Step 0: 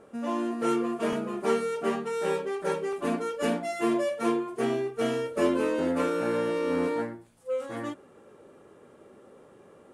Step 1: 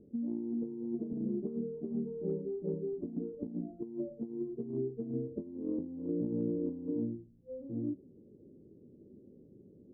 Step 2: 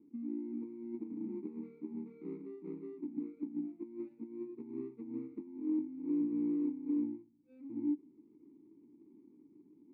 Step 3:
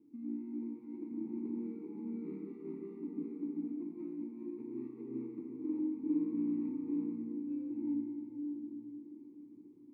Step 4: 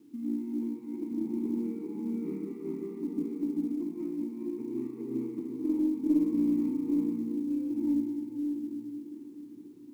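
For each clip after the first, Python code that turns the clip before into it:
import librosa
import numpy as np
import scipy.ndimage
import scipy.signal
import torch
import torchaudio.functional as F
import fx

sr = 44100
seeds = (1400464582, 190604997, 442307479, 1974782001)

y1 = scipy.signal.sosfilt(scipy.signal.cheby2(4, 80, 1900.0, 'lowpass', fs=sr, output='sos'), x)
y1 = fx.over_compress(y1, sr, threshold_db=-35.0, ratio=-0.5)
y2 = scipy.ndimage.median_filter(y1, 41, mode='constant')
y2 = fx.vowel_filter(y2, sr, vowel='u')
y2 = F.gain(torch.from_numpy(y2), 5.0).numpy()
y3 = fx.room_shoebox(y2, sr, seeds[0], volume_m3=160.0, walls='hard', distance_m=0.52)
y3 = F.gain(torch.from_numpy(y3), -3.0).numpy()
y4 = fx.tracing_dist(y3, sr, depth_ms=0.028)
y4 = fx.quant_companded(y4, sr, bits=8)
y4 = F.gain(torch.from_numpy(y4), 7.5).numpy()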